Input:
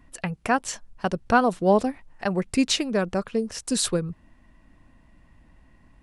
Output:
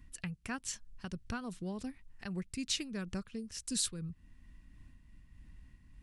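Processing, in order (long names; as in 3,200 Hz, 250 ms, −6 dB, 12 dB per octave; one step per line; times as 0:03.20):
guitar amp tone stack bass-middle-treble 6-0-2
downward compressor 1.5 to 1, threshold −60 dBFS, peak gain reduction 9 dB
amplitude modulation by smooth noise, depth 65%
level +15.5 dB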